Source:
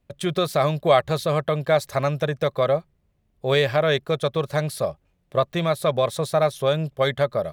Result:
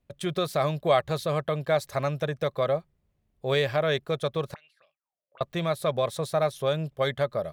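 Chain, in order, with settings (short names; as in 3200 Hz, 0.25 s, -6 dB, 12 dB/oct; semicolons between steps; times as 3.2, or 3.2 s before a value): 4.54–5.41 auto-wah 470–2800 Hz, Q 18, up, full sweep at -21.5 dBFS; gain -5 dB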